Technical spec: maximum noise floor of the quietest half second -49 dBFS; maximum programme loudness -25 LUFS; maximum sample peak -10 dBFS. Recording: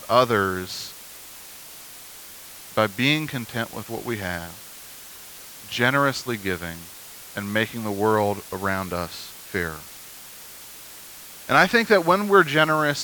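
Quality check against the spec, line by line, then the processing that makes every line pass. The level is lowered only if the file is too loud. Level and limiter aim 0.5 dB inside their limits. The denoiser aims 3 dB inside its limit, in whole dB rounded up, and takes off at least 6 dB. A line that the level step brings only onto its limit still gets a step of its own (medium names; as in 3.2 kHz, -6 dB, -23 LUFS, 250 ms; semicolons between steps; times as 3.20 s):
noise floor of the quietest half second -42 dBFS: fail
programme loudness -22.5 LUFS: fail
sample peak -3.5 dBFS: fail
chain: noise reduction 7 dB, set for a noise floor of -42 dBFS; trim -3 dB; peak limiter -10.5 dBFS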